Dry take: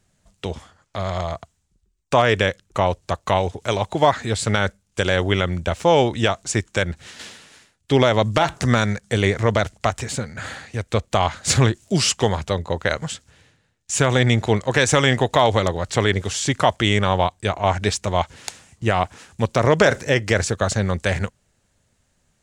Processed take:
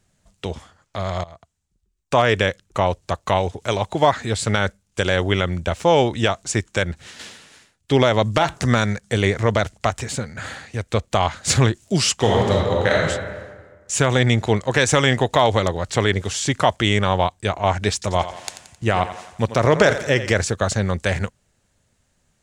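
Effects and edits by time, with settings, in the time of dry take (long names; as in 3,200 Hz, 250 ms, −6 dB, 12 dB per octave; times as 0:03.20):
0:01.24–0:02.23: fade in, from −19 dB
0:12.17–0:13.01: thrown reverb, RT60 1.5 s, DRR −3 dB
0:17.93–0:20.31: feedback echo with a high-pass in the loop 88 ms, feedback 52%, high-pass 190 Hz, level −12 dB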